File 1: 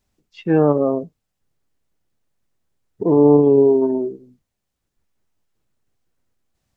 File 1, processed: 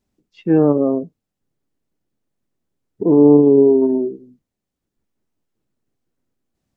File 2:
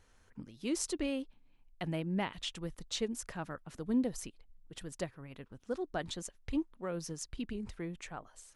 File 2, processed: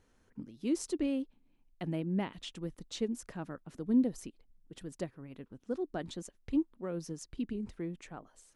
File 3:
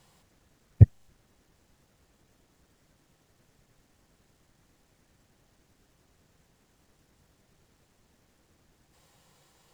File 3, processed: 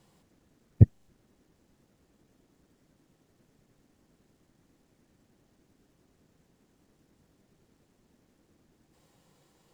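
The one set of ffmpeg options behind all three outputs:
-af "equalizer=f=270:t=o:w=1.9:g=9.5,volume=-5.5dB"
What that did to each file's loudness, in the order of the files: +2.0, +2.0, -2.0 LU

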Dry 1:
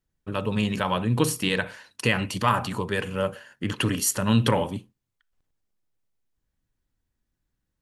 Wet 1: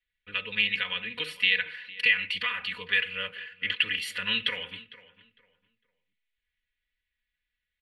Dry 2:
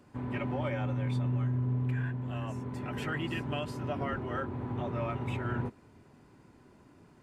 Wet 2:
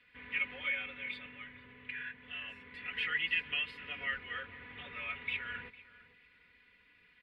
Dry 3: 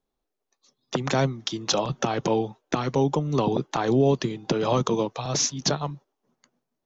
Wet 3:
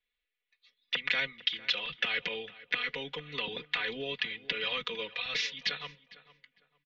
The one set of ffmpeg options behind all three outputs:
-filter_complex "[0:a]acrossover=split=460 5800:gain=0.178 1 0.158[a][b][c];[a][b][c]amix=inputs=3:normalize=0,aecho=1:1:4.1:0.96,alimiter=limit=-15.5dB:level=0:latency=1:release=245,firequalizer=gain_entry='entry(120,0);entry(250,-15);entry(450,-11);entry(760,-23);entry(2000,9);entry(3500,4);entry(6300,-21);entry(9200,-8)':delay=0.05:min_phase=1,asplit=2[d][e];[e]adelay=454,lowpass=f=2.2k:p=1,volume=-17dB,asplit=2[f][g];[g]adelay=454,lowpass=f=2.2k:p=1,volume=0.27,asplit=2[h][i];[i]adelay=454,lowpass=f=2.2k:p=1,volume=0.27[j];[d][f][h][j]amix=inputs=4:normalize=0"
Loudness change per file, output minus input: -1.5, -3.0, -7.5 LU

